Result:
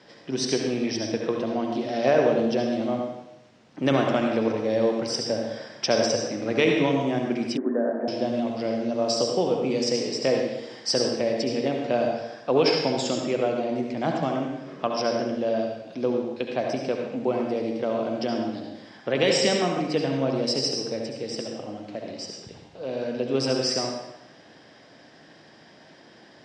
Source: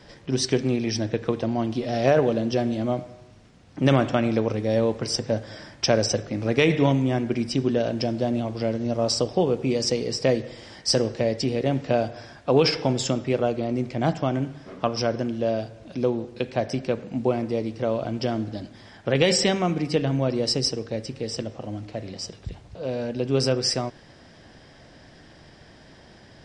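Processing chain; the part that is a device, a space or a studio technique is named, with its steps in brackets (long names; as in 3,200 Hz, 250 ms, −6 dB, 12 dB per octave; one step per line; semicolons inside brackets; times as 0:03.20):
supermarket ceiling speaker (band-pass filter 210–6,800 Hz; convolution reverb RT60 0.80 s, pre-delay 63 ms, DRR 2 dB)
0:07.57–0:08.08: Chebyshev band-pass filter 190–1,800 Hz, order 5
level −2 dB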